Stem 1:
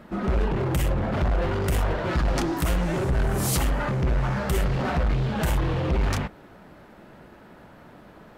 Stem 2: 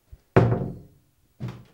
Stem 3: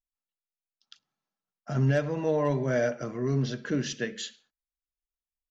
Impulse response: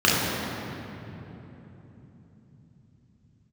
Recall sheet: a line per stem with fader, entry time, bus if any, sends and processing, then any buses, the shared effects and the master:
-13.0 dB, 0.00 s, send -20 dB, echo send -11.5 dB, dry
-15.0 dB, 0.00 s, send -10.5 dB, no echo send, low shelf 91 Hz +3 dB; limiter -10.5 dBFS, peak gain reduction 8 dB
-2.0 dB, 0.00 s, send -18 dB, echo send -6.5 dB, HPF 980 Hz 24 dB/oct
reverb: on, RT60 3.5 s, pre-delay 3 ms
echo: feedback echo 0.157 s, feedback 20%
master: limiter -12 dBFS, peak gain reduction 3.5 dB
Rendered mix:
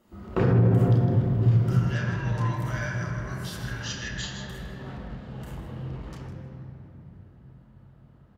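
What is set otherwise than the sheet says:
stem 1 -13.0 dB -> -20.5 dB; stem 2 -15.0 dB -> -8.5 dB

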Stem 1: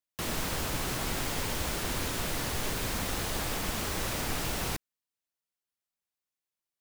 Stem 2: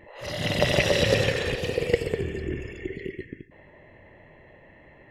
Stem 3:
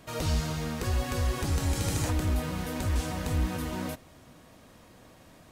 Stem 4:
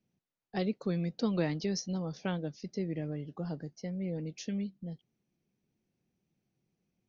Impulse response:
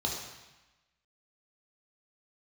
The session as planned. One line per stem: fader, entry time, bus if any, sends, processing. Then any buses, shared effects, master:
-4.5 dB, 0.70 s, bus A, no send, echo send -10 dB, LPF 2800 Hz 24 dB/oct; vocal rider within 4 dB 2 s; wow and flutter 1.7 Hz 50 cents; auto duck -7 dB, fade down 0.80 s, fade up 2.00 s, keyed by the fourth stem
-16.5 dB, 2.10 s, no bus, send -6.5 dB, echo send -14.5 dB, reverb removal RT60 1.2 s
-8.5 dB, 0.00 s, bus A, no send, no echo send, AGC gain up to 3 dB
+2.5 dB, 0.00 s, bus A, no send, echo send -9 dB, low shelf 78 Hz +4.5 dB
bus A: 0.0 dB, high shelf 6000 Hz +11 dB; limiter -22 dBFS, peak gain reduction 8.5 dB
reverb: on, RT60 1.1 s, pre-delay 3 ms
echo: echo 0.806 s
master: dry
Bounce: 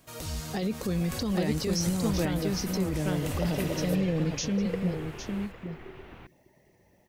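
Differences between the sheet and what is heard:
stem 2: entry 2.10 s -> 2.80 s; stem 4 +2.5 dB -> +10.0 dB

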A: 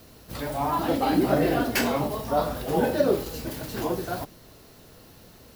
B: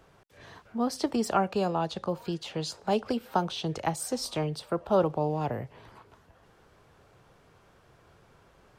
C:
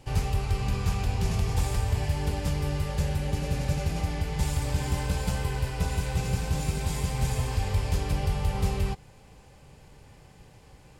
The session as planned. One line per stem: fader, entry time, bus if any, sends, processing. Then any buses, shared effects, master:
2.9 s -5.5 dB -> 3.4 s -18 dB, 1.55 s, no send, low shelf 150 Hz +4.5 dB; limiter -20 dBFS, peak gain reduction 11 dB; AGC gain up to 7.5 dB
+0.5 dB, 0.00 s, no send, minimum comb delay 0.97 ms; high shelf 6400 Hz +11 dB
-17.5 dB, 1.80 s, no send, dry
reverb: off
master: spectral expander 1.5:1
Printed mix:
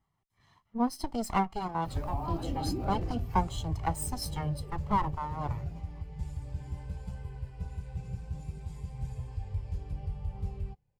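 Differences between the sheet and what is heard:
stem A: missing AGC gain up to 7.5 dB; stem C -17.5 dB -> -8.0 dB

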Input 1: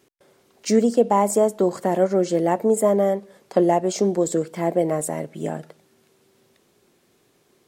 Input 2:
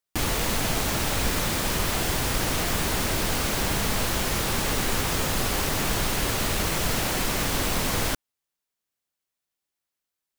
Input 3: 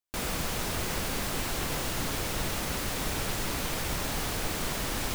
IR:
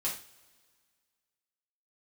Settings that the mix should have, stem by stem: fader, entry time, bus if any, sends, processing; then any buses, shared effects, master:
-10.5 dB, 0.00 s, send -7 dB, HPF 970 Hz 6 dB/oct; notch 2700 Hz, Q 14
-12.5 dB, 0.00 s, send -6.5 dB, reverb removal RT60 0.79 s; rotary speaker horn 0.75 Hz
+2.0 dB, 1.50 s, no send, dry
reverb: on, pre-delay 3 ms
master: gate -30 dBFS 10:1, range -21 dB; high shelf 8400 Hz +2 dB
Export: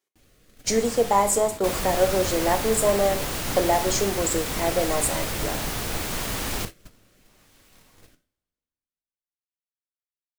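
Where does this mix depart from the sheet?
stem 1 -10.5 dB -> +0.5 dB; stem 2: missing reverb removal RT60 0.79 s

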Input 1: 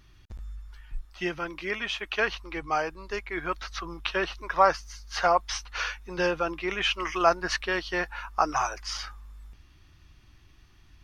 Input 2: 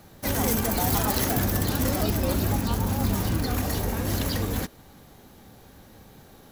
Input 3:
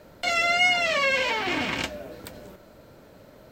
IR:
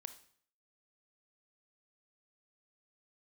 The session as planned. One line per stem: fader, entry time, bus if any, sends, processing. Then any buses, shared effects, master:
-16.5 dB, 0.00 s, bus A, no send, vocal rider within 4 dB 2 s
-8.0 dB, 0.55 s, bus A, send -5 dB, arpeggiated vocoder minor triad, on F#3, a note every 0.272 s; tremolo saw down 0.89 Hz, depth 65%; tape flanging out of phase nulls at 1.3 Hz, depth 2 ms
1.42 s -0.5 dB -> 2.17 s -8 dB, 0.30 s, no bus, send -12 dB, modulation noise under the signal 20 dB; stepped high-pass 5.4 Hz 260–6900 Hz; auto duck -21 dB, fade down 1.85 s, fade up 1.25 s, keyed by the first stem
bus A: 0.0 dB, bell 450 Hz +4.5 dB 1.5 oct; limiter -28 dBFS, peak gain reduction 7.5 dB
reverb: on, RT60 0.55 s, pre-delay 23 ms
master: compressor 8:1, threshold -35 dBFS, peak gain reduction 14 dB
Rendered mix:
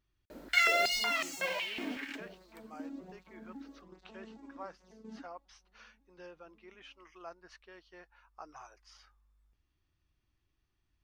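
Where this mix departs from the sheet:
stem 1 -16.5 dB -> -27.5 dB; stem 2 -8.0 dB -> -20.0 dB; master: missing compressor 8:1, threshold -35 dBFS, peak gain reduction 14 dB

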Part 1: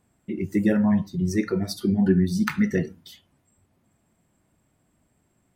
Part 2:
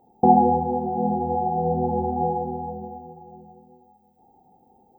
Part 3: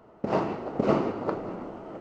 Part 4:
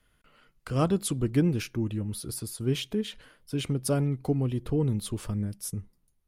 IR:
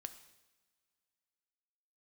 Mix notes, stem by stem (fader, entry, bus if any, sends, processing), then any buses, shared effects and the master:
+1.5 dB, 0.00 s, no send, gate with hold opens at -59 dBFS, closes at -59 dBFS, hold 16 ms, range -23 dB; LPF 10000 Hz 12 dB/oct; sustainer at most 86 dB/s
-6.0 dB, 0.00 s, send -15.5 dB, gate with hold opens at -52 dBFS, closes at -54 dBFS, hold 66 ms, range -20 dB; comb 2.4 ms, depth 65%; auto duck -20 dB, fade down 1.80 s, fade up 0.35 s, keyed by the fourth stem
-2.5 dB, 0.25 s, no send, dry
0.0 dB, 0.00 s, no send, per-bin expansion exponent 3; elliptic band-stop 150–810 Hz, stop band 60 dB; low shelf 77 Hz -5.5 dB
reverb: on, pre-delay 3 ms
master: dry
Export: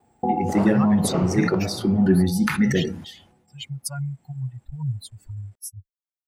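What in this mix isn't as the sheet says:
stem 2: missing comb 2.4 ms, depth 65%; stem 4 0.0 dB -> +7.0 dB

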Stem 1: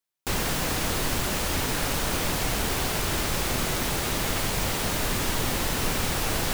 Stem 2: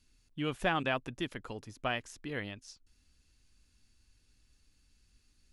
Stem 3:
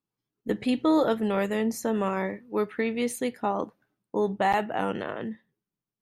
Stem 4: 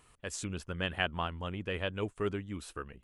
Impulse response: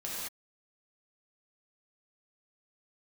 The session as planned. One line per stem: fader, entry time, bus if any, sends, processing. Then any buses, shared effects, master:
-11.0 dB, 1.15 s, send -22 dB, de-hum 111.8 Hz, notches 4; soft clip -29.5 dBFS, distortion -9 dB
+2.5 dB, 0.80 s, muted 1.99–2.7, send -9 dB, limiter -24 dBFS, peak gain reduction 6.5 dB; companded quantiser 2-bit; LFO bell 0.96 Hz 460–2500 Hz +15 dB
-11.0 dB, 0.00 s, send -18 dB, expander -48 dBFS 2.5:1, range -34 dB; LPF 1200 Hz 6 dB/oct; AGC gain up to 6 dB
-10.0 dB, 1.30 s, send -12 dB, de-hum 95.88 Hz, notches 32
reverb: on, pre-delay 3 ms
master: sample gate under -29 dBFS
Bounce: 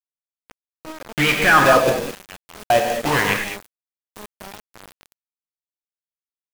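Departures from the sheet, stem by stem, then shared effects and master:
stem 3 -11.0 dB -> -18.0 dB; reverb return +9.0 dB

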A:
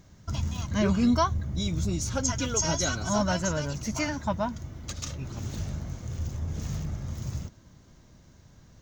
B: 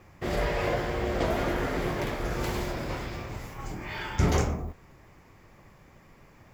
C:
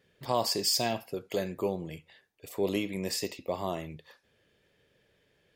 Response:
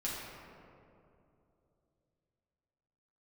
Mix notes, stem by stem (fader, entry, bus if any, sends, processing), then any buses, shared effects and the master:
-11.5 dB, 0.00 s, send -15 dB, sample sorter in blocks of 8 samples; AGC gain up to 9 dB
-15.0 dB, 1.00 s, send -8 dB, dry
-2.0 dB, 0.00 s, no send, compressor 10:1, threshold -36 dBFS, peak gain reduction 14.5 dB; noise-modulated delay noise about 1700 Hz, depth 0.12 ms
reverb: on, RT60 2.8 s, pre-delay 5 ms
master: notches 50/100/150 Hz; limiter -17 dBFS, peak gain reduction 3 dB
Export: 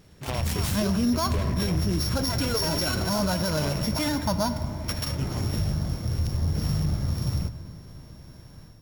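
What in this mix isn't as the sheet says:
stem A -11.5 dB -> -2.5 dB; stem C -2.0 dB -> +7.5 dB; master: missing notches 50/100/150 Hz

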